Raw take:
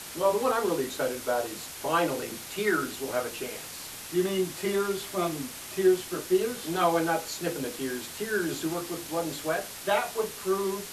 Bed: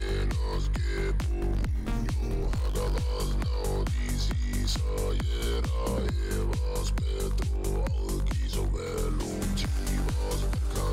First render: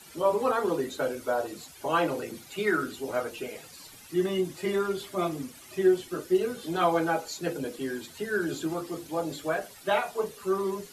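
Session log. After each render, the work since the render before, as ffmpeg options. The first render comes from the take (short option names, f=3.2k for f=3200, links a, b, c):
-af "afftdn=nr=13:nf=-41"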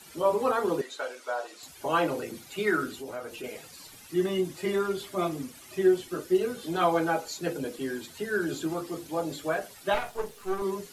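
-filter_complex "[0:a]asettb=1/sr,asplit=3[a][b][c];[a]atrim=end=0.814[d];[b]atrim=start=0.81:end=1.63,asetpts=PTS-STARTPTS,afade=t=in:d=0.004:c=qsin,afade=t=out:st=0.816:d=0.004:c=qsin,highpass=730,lowpass=7.6k[e];[c]atrim=start=1.626[f];[d][e]acrossfade=d=0.004:c1=hsin:c2=qsin[g];[g][f]acrossfade=d=0.004:c1=qsin:c2=hsin,asettb=1/sr,asplit=3[h][i][j];[h]atrim=end=3.014[k];[i]atrim=start=3.01:end=3.44,asetpts=PTS-STARTPTS,afade=t=in:d=0.004:c=qsin,afade=t=out:st=0.426:d=0.004:c=qsin,acompressor=threshold=-38dB:ratio=2:attack=3.2:release=140:knee=1:detection=peak[l];[j]atrim=start=3.436[m];[k][l]acrossfade=d=0.004:c1=hsin:c2=qsin[n];[n][m]acrossfade=d=0.004:c1=qsin:c2=hsin,asettb=1/sr,asplit=3[o][p][q];[o]atrim=end=9.944[r];[p]atrim=start=9.94:end=10.62,asetpts=PTS-STARTPTS,afade=t=in:d=0.004:c=qsin,afade=t=out:st=0.676:d=0.004:c=qsin,aeval=exprs='if(lt(val(0),0),0.251*val(0),val(0))':c=same[s];[q]atrim=start=10.616[t];[r][s]acrossfade=d=0.004:c1=hsin:c2=qsin[u];[u][t]acrossfade=d=0.004:c1=qsin:c2=hsin"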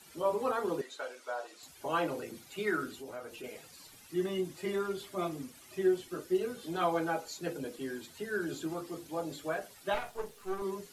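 -af "volume=-6dB"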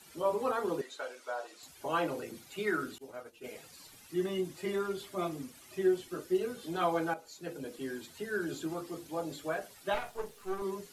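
-filter_complex "[0:a]asettb=1/sr,asplit=3[a][b][c];[a]atrim=end=2.984[d];[b]atrim=start=2.98:end=3.45,asetpts=PTS-STARTPTS,afade=t=in:d=0.004:c=qsin,afade=t=out:st=0.466:d=0.004:c=qsin,agate=range=-33dB:threshold=-41dB:ratio=3:release=100:detection=peak[e];[c]atrim=start=3.446[f];[d][e]acrossfade=d=0.004:c1=hsin:c2=qsin[g];[g][f]acrossfade=d=0.004:c1=qsin:c2=hsin,asplit=2[h][i];[h]atrim=end=7.14,asetpts=PTS-STARTPTS,afade=t=out:st=7.136:d=0.004:c=hsin:silence=0.251189[j];[i]atrim=start=7.14,asetpts=PTS-STARTPTS,afade=t=in:d=0.72:silence=0.251189[k];[j][k]concat=n=2:v=0:a=1"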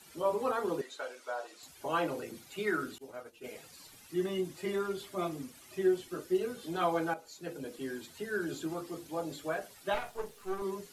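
-af anull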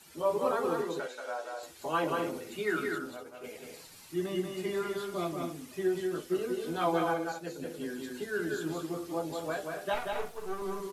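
-filter_complex "[0:a]asplit=2[a][b];[b]adelay=12,volume=-11.5dB[c];[a][c]amix=inputs=2:normalize=0,asplit=2[d][e];[e]aecho=0:1:183.7|247.8:0.631|0.282[f];[d][f]amix=inputs=2:normalize=0"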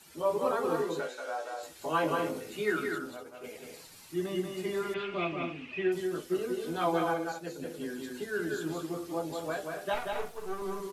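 -filter_complex "[0:a]asettb=1/sr,asplit=3[a][b][c];[a]atrim=end=0.684[d];[b]atrim=start=0.68:end=2.72,asetpts=PTS-STARTPTS,afade=t=in:d=0.004:c=qsin,afade=t=out:st=2.036:d=0.004:c=qsin,asplit=2[e][f];[f]adelay=19,volume=-5.5dB[g];[e][g]amix=inputs=2:normalize=0,atrim=end_sample=89964[h];[c]atrim=start=2.716[i];[d][h]acrossfade=d=0.004:c1=hsin:c2=qsin[j];[j][i]acrossfade=d=0.004:c1=qsin:c2=hsin,asettb=1/sr,asplit=3[k][l][m];[k]atrim=end=4.944[n];[l]atrim=start=4.94:end=5.92,asetpts=PTS-STARTPTS,afade=t=in:d=0.004:c=qsin,afade=t=out:st=0.976:d=0.004:c=qsin,lowpass=f=2.6k:t=q:w=7.9[o];[m]atrim=start=5.916[p];[n][o]acrossfade=d=0.004:c1=hsin:c2=qsin[q];[q][p]acrossfade=d=0.004:c1=qsin:c2=hsin"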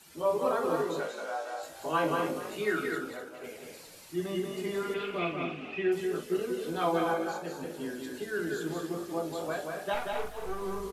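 -filter_complex "[0:a]asplit=2[a][b];[b]adelay=46,volume=-11dB[c];[a][c]amix=inputs=2:normalize=0,asplit=2[d][e];[e]asplit=4[f][g][h][i];[f]adelay=248,afreqshift=51,volume=-12.5dB[j];[g]adelay=496,afreqshift=102,volume=-21.1dB[k];[h]adelay=744,afreqshift=153,volume=-29.8dB[l];[i]adelay=992,afreqshift=204,volume=-38.4dB[m];[j][k][l][m]amix=inputs=4:normalize=0[n];[d][n]amix=inputs=2:normalize=0"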